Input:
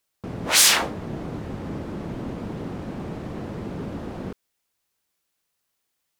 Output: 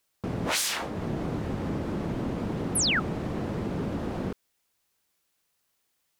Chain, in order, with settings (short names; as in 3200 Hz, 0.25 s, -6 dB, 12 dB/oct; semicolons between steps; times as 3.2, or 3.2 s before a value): compressor 12:1, threshold -27 dBFS, peak gain reduction 15.5 dB; painted sound fall, 2.75–3, 1200–12000 Hz -27 dBFS; gain +2 dB